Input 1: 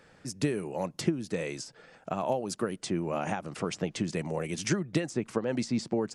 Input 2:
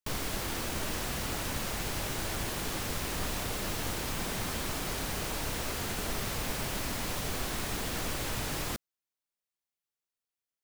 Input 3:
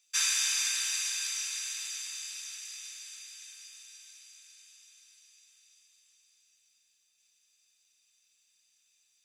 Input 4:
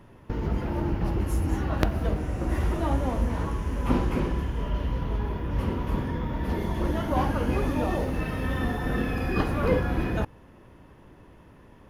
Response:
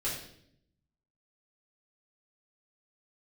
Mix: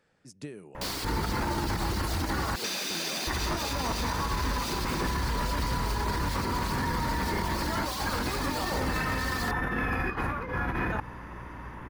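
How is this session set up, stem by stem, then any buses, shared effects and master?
−12.0 dB, 0.00 s, no send, no processing
+1.0 dB, 0.75 s, no send, Butterworth high-pass 170 Hz 72 dB per octave; parametric band 4,500 Hz +10 dB 0.51 octaves; reverb reduction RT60 0.78 s
+2.0 dB, 2.50 s, no send, inverse Chebyshev low-pass filter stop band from 9,700 Hz, stop band 40 dB; downward compressor, threshold −35 dBFS, peak gain reduction 7.5 dB
+2.5 dB, 0.75 s, muted 0:02.56–0:03.27, no send, flat-topped bell 1,400 Hz +10 dB; compressor whose output falls as the input rises −27 dBFS, ratio −0.5; mains hum 60 Hz, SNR 20 dB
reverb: not used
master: brickwall limiter −20.5 dBFS, peak gain reduction 10 dB

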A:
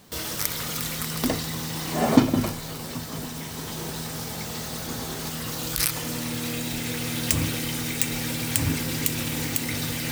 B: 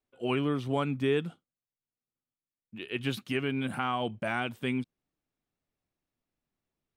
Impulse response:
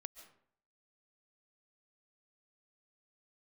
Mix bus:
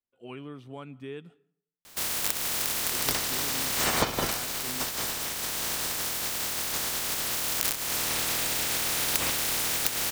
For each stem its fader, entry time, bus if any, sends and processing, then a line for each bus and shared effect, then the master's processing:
+2.0 dB, 1.85 s, no send, ceiling on every frequency bin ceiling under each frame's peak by 24 dB; downward compressor 6 to 1, threshold −25 dBFS, peak gain reduction 14.5 dB
−14.0 dB, 0.00 s, send −7.5 dB, no processing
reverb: on, RT60 0.60 s, pre-delay 100 ms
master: no processing

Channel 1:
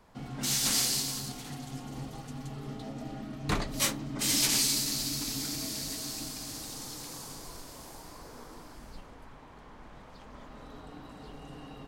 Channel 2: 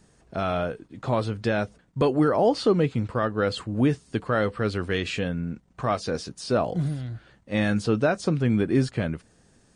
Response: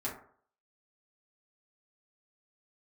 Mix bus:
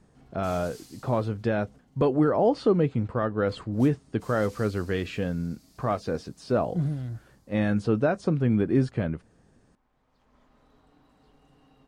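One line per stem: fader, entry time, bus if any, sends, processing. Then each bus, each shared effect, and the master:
−15.5 dB, 0.00 s, send −16 dB, automatic ducking −14 dB, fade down 1.05 s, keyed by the second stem
−0.5 dB, 0.00 s, no send, high-shelf EQ 2,200 Hz −11.5 dB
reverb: on, RT60 0.55 s, pre-delay 4 ms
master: no processing

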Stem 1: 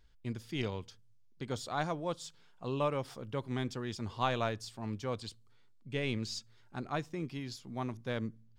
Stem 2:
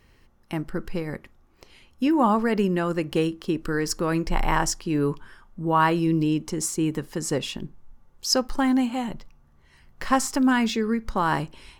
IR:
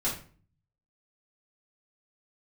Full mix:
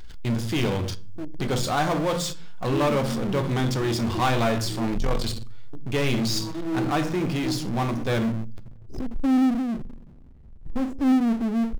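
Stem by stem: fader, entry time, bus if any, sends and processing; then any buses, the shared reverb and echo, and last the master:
+1.5 dB, 0.00 s, send −11 dB, no processing
−2.0 dB, 0.65 s, muted 0:05.18–0:05.73, send −21.5 dB, lower of the sound and its delayed copy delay 1 ms; drawn EQ curve 140 Hz 0 dB, 380 Hz +4 dB, 630 Hz −11 dB, 1,600 Hz −23 dB; every bin expanded away from the loudest bin 1.5 to 1; automatic ducking −15 dB, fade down 1.95 s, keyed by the first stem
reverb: on, RT60 0.40 s, pre-delay 3 ms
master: power curve on the samples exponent 0.5

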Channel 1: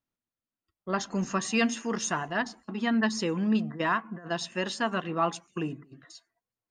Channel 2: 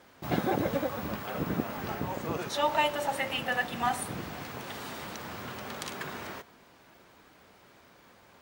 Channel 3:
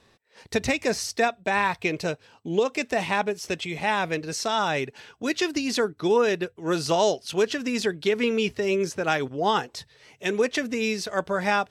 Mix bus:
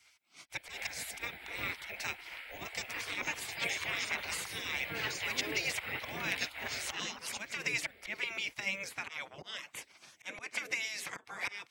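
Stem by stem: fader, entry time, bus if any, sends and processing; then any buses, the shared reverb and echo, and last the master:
−2.0 dB, 2.00 s, no send, low-pass that shuts in the quiet parts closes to 1,900 Hz; volume swells 136 ms
−1.5 dB, 0.50 s, no send, downward compressor, threshold −31 dBFS, peak gain reduction 9.5 dB; phaser with its sweep stopped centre 2,700 Hz, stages 4
+3.0 dB, 0.00 s, no send, high-pass filter 130 Hz 24 dB per octave; volume swells 329 ms; downward compressor 6 to 1, threshold −30 dBFS, peak gain reduction 9.5 dB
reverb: not used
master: gate on every frequency bin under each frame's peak −15 dB weak; parametric band 2,200 Hz +10.5 dB 0.36 octaves

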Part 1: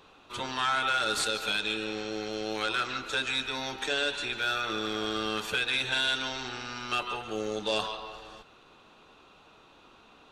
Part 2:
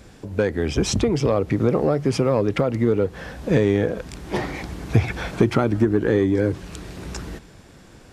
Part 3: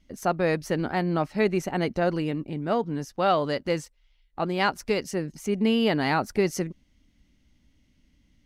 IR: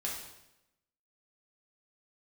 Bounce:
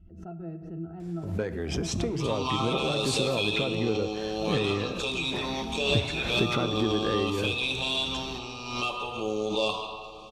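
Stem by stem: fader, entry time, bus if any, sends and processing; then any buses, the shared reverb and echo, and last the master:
−1.5 dB, 1.90 s, send −4 dB, elliptic band-stop filter 1,200–2,400 Hz, stop band 40 dB; high-shelf EQ 6,300 Hz −7.5 dB
−12.0 dB, 1.00 s, send −12.5 dB, no processing
−13.0 dB, 0.00 s, send −9 dB, spectral tilt −2 dB per octave; mains-hum notches 60/120/180 Hz; resonances in every octave E, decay 0.1 s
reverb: on, RT60 0.90 s, pre-delay 3 ms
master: background raised ahead of every attack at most 55 dB per second

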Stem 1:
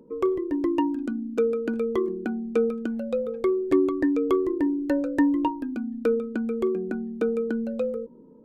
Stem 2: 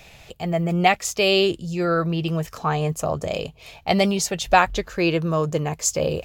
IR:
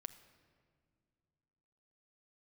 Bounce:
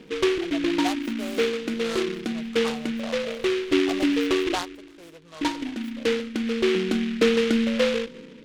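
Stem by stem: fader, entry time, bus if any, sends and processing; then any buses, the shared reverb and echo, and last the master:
+2.0 dB, 0.00 s, muted 0:04.55–0:05.41, send −3.5 dB, Chebyshev low-pass filter 3,400 Hz; low-shelf EQ 250 Hz +5.5 dB; hum removal 81.25 Hz, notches 15; automatic ducking −10 dB, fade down 0.50 s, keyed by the second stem
0:04.50 −9.5 dB → 0:04.82 −17 dB, 0.00 s, no send, three-way crossover with the lows and the highs turned down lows −14 dB, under 580 Hz, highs −16 dB, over 2,700 Hz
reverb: on, RT60 2.2 s, pre-delay 6 ms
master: flat-topped bell 3,200 Hz −8.5 dB; short delay modulated by noise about 2,300 Hz, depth 0.13 ms

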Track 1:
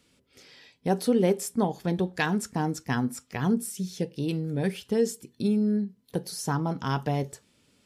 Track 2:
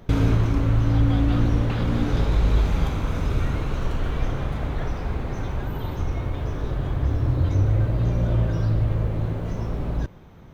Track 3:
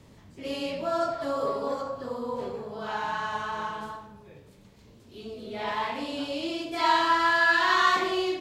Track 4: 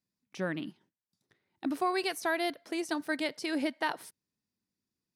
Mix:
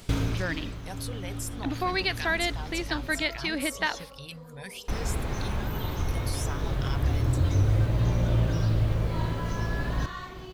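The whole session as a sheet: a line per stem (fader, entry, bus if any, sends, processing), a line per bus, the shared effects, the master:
−4.5 dB, 0.00 s, no send, no echo send, reverb reduction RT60 1.3 s; guitar amp tone stack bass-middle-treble 10-0-10; envelope flattener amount 50%
−3.0 dB, 0.00 s, muted 0:02.83–0:04.88, no send, echo send −17 dB, high-shelf EQ 2,500 Hz +11 dB; automatic ducking −17 dB, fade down 0.75 s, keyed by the fourth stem
−17.5 dB, 2.30 s, no send, no echo send, no processing
−0.5 dB, 0.00 s, no send, no echo send, octave-band graphic EQ 2,000/4,000/8,000 Hz +7/+10/−11 dB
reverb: not used
echo: repeating echo 402 ms, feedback 49%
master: no processing

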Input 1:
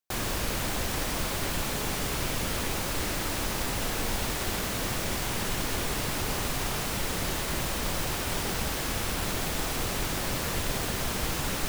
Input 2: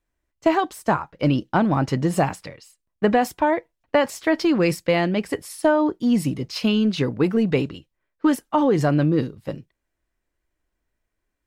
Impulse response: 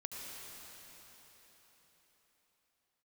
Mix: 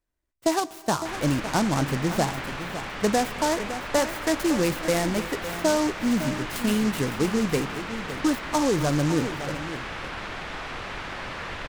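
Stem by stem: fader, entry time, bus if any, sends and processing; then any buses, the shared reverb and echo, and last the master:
−0.5 dB, 0.95 s, no send, no echo send, low-pass filter 1,900 Hz 12 dB per octave; tilt shelving filter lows −8 dB, about 850 Hz
−5.5 dB, 0.00 s, send −14 dB, echo send −10.5 dB, short delay modulated by noise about 5,300 Hz, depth 0.06 ms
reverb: on, RT60 4.6 s, pre-delay 66 ms
echo: single-tap delay 559 ms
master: no processing

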